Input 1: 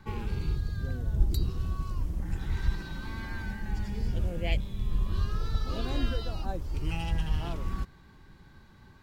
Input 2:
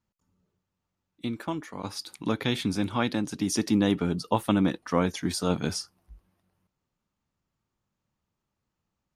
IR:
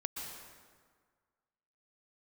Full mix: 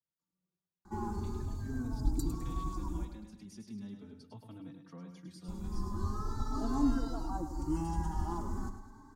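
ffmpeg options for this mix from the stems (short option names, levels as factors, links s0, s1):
-filter_complex "[0:a]firequalizer=gain_entry='entry(140,0);entry(300,15);entry(490,-5);entry(880,14);entry(2500,-19);entry(6800,12);entry(11000,3)':delay=0.05:min_phase=1,adelay=850,volume=0.596,asplit=3[s0][s1][s2];[s0]atrim=end=3.05,asetpts=PTS-STARTPTS,afade=t=out:st=3.046:d=0.004:c=hsin[s3];[s1]atrim=start=3.05:end=5.48,asetpts=PTS-STARTPTS,volume=0[s4];[s2]atrim=start=5.48,asetpts=PTS-STARTPTS,afade=t=in:d=0.004:c=hsin[s5];[s3][s4][s5]concat=n=3:v=0:a=1,asplit=2[s6][s7];[s7]volume=0.299[s8];[1:a]highpass=110,acrossover=split=220[s9][s10];[s10]acompressor=threshold=0.00631:ratio=2.5[s11];[s9][s11]amix=inputs=2:normalize=0,volume=0.188,asplit=2[s12][s13];[s13]volume=0.473[s14];[s8][s14]amix=inputs=2:normalize=0,aecho=0:1:104|208|312|416|520|624|728:1|0.48|0.23|0.111|0.0531|0.0255|0.0122[s15];[s6][s12][s15]amix=inputs=3:normalize=0,equalizer=f=4600:t=o:w=0.33:g=4,asplit=2[s16][s17];[s17]adelay=3.9,afreqshift=0.41[s18];[s16][s18]amix=inputs=2:normalize=1"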